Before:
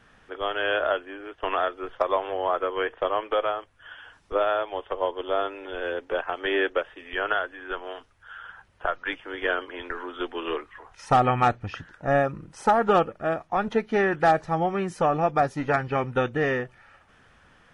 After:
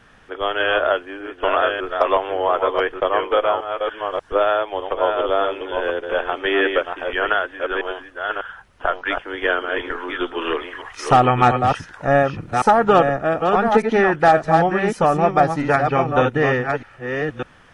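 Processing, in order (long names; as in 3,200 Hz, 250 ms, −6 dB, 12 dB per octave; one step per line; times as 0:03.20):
delay that plays each chunk backwards 601 ms, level −5 dB
0:10.41–0:12.51: one half of a high-frequency compander encoder only
level +6 dB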